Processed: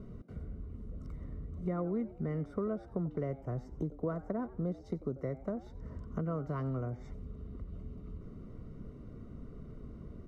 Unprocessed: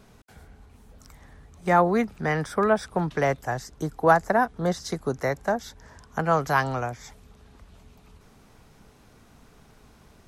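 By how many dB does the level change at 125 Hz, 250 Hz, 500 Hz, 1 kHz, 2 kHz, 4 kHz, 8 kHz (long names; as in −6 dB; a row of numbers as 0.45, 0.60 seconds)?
−5.5 dB, −7.5 dB, −13.5 dB, −23.5 dB, −27.5 dB, below −25 dB, below −30 dB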